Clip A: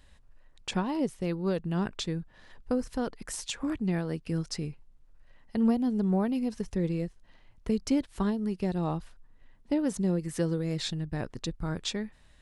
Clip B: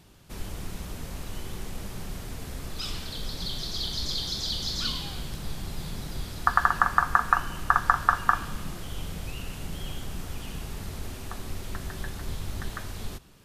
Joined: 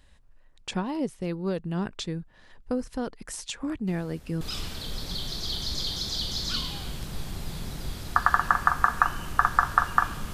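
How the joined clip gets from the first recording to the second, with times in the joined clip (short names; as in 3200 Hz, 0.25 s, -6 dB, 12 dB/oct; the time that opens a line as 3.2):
clip A
3.87 add clip B from 2.18 s 0.54 s -13.5 dB
4.41 switch to clip B from 2.72 s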